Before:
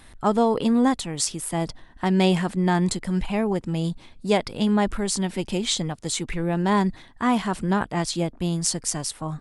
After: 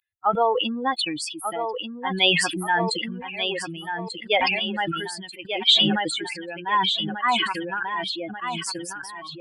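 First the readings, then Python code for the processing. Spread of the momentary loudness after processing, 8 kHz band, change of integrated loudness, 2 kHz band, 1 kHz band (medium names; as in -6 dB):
13 LU, -7.0 dB, +0.5 dB, +7.5 dB, +3.0 dB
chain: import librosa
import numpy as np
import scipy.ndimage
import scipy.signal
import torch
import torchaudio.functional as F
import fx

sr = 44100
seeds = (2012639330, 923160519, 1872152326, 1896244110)

y = fx.bin_expand(x, sr, power=3.0)
y = scipy.signal.sosfilt(scipy.signal.butter(2, 780.0, 'highpass', fs=sr, output='sos'), y)
y = fx.high_shelf_res(y, sr, hz=4500.0, db=-9.5, q=3.0)
y = fx.echo_feedback(y, sr, ms=1189, feedback_pct=26, wet_db=-8.0)
y = fx.sustainer(y, sr, db_per_s=33.0)
y = y * librosa.db_to_amplitude(8.5)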